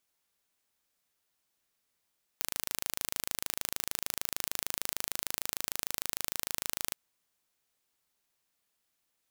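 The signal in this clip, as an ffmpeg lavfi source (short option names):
-f lavfi -i "aevalsrc='0.562*eq(mod(n,1658),0)':d=4.52:s=44100"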